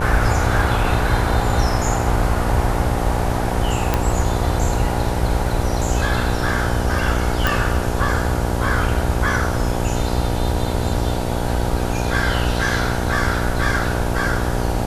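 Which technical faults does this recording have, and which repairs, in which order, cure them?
buzz 60 Hz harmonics 16 -23 dBFS
3.94 pop -4 dBFS
7.47 pop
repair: de-click; de-hum 60 Hz, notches 16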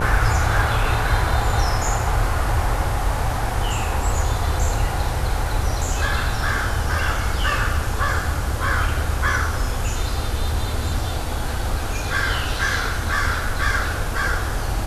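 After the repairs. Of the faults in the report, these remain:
none

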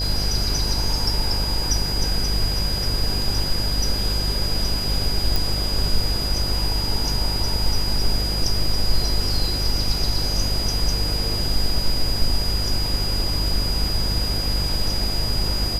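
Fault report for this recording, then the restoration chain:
buzz 50 Hz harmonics 20 -26 dBFS
tone 4900 Hz -25 dBFS
5.36 pop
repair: de-click; de-hum 50 Hz, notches 20; notch 4900 Hz, Q 30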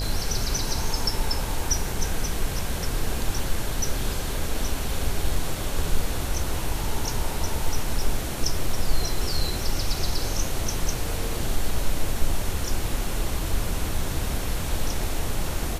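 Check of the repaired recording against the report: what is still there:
none

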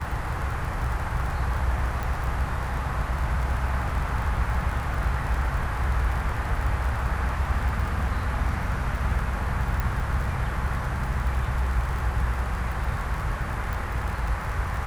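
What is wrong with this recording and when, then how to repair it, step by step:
crackle 31/s -30 dBFS
2.03 pop
9.8 pop
13.73 pop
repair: de-click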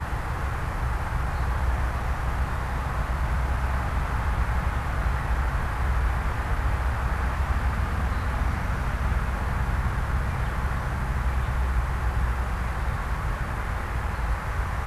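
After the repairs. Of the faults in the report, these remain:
none

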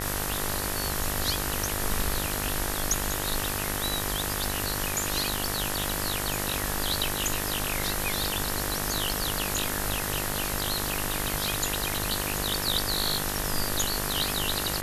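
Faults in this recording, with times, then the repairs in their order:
buzz 50 Hz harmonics 39 -34 dBFS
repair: de-hum 50 Hz, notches 39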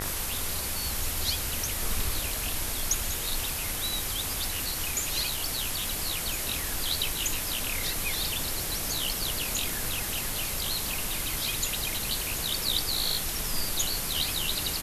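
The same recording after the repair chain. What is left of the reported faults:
none

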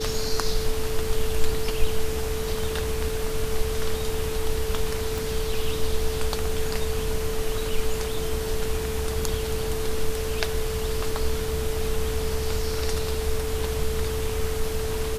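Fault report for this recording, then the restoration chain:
tone 440 Hz -29 dBFS
5.18 pop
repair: de-click; notch 440 Hz, Q 30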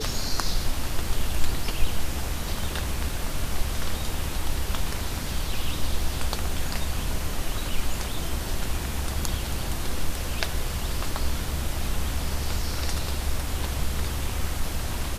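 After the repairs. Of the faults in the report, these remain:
none

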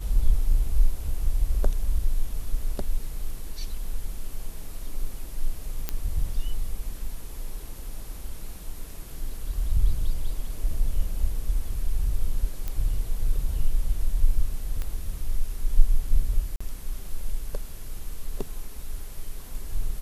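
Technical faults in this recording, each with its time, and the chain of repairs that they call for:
5.89 pop -11 dBFS
12.68 pop -17 dBFS
14.82 pop -18 dBFS
16.56–16.61 gap 45 ms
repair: de-click; interpolate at 16.56, 45 ms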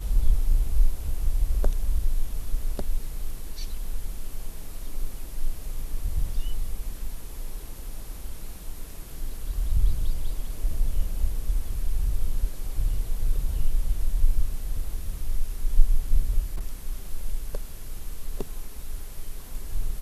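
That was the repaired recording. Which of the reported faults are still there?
none

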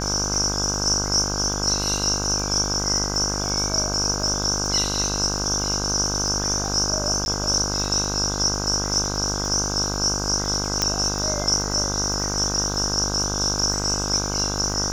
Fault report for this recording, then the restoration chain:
buzz 50 Hz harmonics 32 -28 dBFS
crackle 37/s -29 dBFS
7.25–7.26 gap 11 ms
10.82 pop -5 dBFS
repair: de-click; de-hum 50 Hz, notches 32; interpolate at 7.25, 11 ms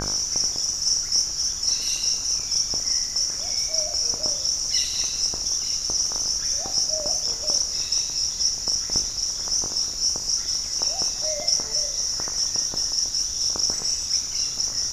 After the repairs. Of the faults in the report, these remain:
none

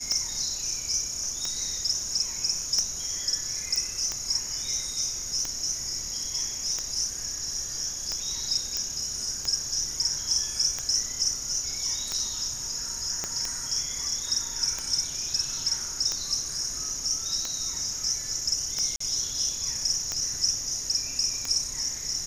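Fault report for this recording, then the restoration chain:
tick 45 rpm -15 dBFS
3.76 pop
8.77 pop -12 dBFS
13.24 pop -15 dBFS
18.96–19 gap 44 ms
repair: de-click; interpolate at 18.96, 44 ms

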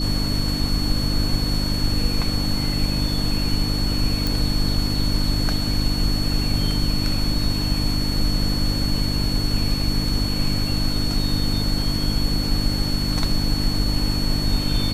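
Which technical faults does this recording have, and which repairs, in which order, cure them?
hum 50 Hz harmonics 6 -25 dBFS
tone 4400 Hz -27 dBFS
4.27 pop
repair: de-click; notch 4400 Hz, Q 30; de-hum 50 Hz, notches 6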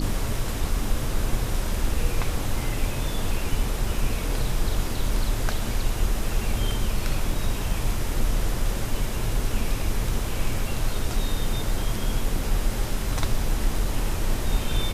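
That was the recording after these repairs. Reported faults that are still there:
none

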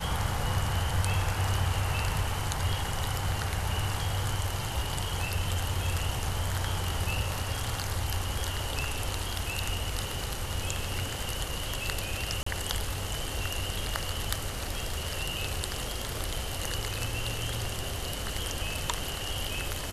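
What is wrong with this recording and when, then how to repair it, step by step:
12.43–12.46 gap 34 ms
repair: interpolate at 12.43, 34 ms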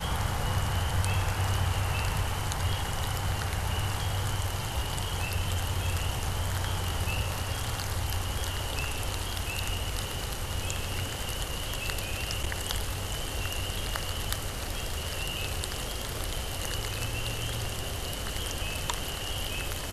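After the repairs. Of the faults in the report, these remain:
none

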